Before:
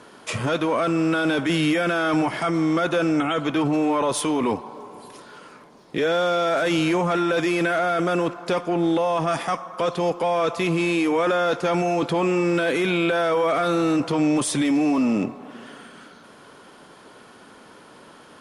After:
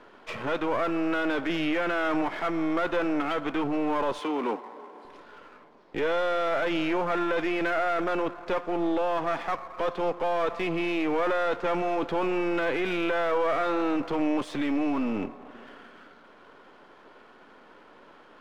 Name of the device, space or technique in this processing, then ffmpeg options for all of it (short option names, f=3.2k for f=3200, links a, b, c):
crystal radio: -filter_complex "[0:a]highpass=260,lowpass=2.7k,aeval=exprs='if(lt(val(0),0),0.447*val(0),val(0))':c=same,asettb=1/sr,asplit=3[a][b][c];[a]atrim=end=4.194[d];[b]atrim=start=4.19:end=5.05,asetpts=PTS-STARTPTS,afade=t=in:d=0.004:c=qsin,afade=t=out:st=0.856:d=0.004:c=qsin,highpass=f=210:w=0.5412,highpass=f=210:w=1.3066[e];[c]atrim=start=5.046[f];[d][e]acrossfade=d=0.004:c1=hsin:c2=qsin[g];[g][f]acrossfade=d=0.004:c1=qsin:c2=hsin,volume=-2dB"